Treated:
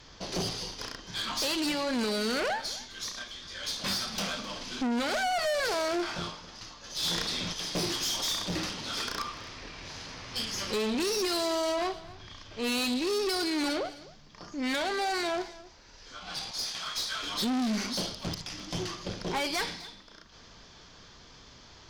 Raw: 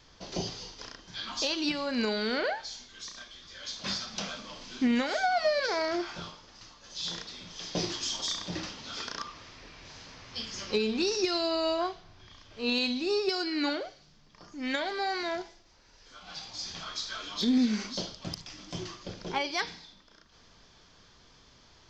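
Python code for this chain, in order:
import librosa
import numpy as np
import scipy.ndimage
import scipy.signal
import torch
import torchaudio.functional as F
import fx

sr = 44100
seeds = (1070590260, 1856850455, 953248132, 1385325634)

y = fx.highpass(x, sr, hz=1100.0, slope=6, at=(16.51, 17.23))
y = fx.tube_stage(y, sr, drive_db=35.0, bias=0.5)
y = y + 10.0 ** (-19.5 / 20.0) * np.pad(y, (int(258 * sr / 1000.0), 0))[:len(y)]
y = fx.env_flatten(y, sr, amount_pct=50, at=(7.02, 7.52), fade=0.02)
y = y * 10.0 ** (8.0 / 20.0)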